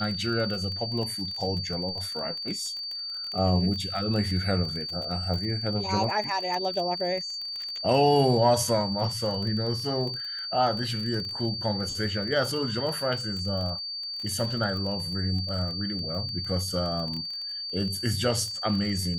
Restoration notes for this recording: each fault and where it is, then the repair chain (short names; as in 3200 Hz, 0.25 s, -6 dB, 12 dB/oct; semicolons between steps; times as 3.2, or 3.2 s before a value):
crackle 25/s -32 dBFS
tone 4600 Hz -32 dBFS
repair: de-click; notch 4600 Hz, Q 30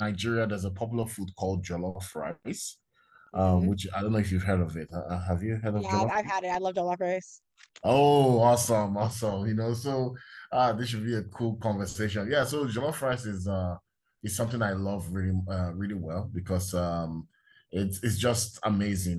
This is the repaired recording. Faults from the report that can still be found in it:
none